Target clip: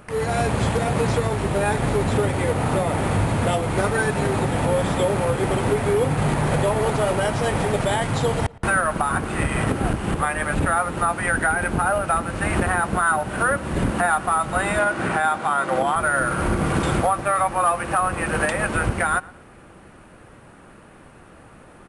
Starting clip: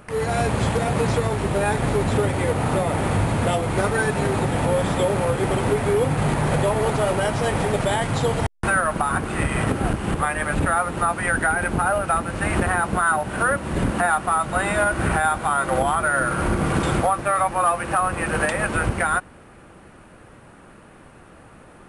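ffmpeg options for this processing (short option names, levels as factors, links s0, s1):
-filter_complex "[0:a]asettb=1/sr,asplit=3[s0][s1][s2];[s0]atrim=end=14.794[s3];[s1]atrim=start=14.79:end=15.96,asetpts=PTS-STARTPTS,afade=t=in:d=0.004:c=qsin,afade=t=out:st=1.166:d=0.004:c=qsin,highpass=160,lowpass=7600[s4];[s2]atrim=start=15.956[s5];[s3][s4]acrossfade=d=0.004:c1=hsin:c2=qsin[s6];[s6][s5]acrossfade=d=0.004:c1=qsin:c2=hsin,asplit=2[s7][s8];[s8]adelay=114,lowpass=f=3300:p=1,volume=0.0794,asplit=2[s9][s10];[s10]adelay=114,lowpass=f=3300:p=1,volume=0.33[s11];[s7][s9][s11]amix=inputs=3:normalize=0"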